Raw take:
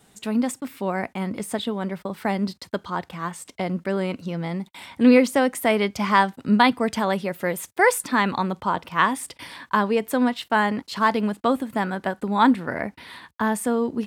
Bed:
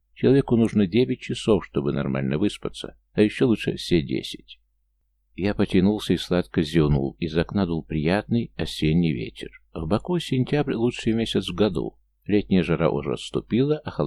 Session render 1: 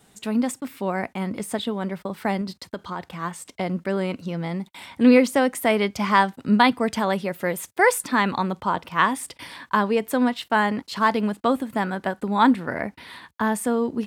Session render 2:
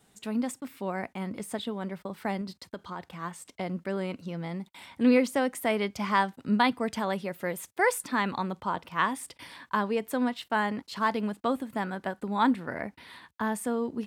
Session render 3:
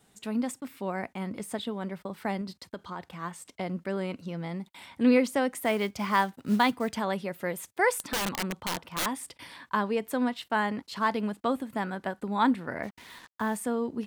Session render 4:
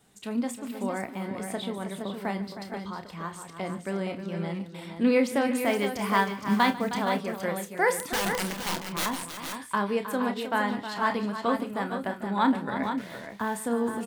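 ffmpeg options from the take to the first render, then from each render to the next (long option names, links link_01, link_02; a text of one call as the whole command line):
ffmpeg -i in.wav -filter_complex "[0:a]asettb=1/sr,asplit=3[link_01][link_02][link_03];[link_01]atrim=end=2.414[link_04];[link_02]atrim=start=2.41:end=3.12,asetpts=PTS-STARTPTS,afade=type=in:duration=0.004:curve=qsin,afade=type=out:start_time=0.706:duration=0.004:curve=qsin,acompressor=threshold=-25dB:ratio=6:attack=3.2:release=140:knee=1:detection=peak[link_05];[link_03]atrim=start=3.116[link_06];[link_04][link_05]acrossfade=duration=0.004:curve1=hsin:curve2=qsin[link_07];[link_07][link_06]acrossfade=duration=0.004:curve1=qsin:curve2=hsin" out.wav
ffmpeg -i in.wav -af "volume=-7dB" out.wav
ffmpeg -i in.wav -filter_complex "[0:a]asettb=1/sr,asplit=3[link_01][link_02][link_03];[link_01]atrim=end=5.564[link_04];[link_02]atrim=start=5.56:end=6.96,asetpts=PTS-STARTPTS,afade=type=in:duration=0.004:curve=qsin,afade=type=out:start_time=1.396:duration=0.004:curve=qsin,acrusher=bits=6:mode=log:mix=0:aa=0.000001[link_05];[link_03]atrim=start=6.956[link_06];[link_04][link_05]acrossfade=duration=0.004:curve1=hsin:curve2=qsin[link_07];[link_07][link_06]acrossfade=duration=0.004:curve1=qsin:curve2=hsin,asettb=1/sr,asplit=3[link_08][link_09][link_10];[link_08]atrim=end=7.974[link_11];[link_09]atrim=start=7.97:end=9.06,asetpts=PTS-STARTPTS,afade=type=in:duration=0.004:curve=qsin,afade=type=out:start_time=1.086:duration=0.004:curve=qsin,aeval=exprs='(mod(15.8*val(0)+1,2)-1)/15.8':channel_layout=same[link_12];[link_10]atrim=start=9.056[link_13];[link_11][link_12]acrossfade=duration=0.004:curve1=hsin:curve2=qsin[link_14];[link_14][link_13]acrossfade=duration=0.004:curve1=qsin:curve2=hsin,asplit=3[link_15][link_16][link_17];[link_15]afade=type=out:start_time=12.82:duration=0.02[link_18];[link_16]acrusher=bits=7:mix=0:aa=0.5,afade=type=in:start_time=12.82:duration=0.02,afade=type=out:start_time=13.56:duration=0.02[link_19];[link_17]afade=type=in:start_time=13.56:duration=0.02[link_20];[link_18][link_19][link_20]amix=inputs=3:normalize=0" out.wav
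ffmpeg -i in.wav -filter_complex "[0:a]asplit=2[link_01][link_02];[link_02]adelay=30,volume=-9.5dB[link_03];[link_01][link_03]amix=inputs=2:normalize=0,aecho=1:1:47|146|314|446|467:0.133|0.119|0.282|0.126|0.422" out.wav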